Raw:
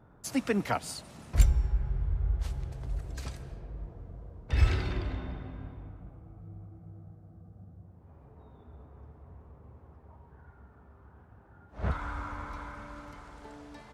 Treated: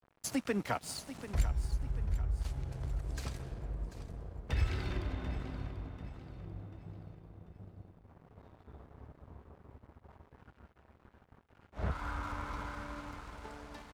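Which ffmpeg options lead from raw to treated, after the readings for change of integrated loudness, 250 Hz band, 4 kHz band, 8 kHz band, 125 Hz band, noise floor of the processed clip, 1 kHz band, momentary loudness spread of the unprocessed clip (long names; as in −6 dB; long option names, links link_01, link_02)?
−6.0 dB, −4.0 dB, −2.5 dB, −2.0 dB, −5.0 dB, −67 dBFS, −3.0 dB, 24 LU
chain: -af "acompressor=threshold=-38dB:ratio=2,aeval=exprs='sgn(val(0))*max(abs(val(0))-0.00224,0)':channel_layout=same,aecho=1:1:740|1480|2220|2960:0.224|0.0895|0.0358|0.0143,volume=3dB"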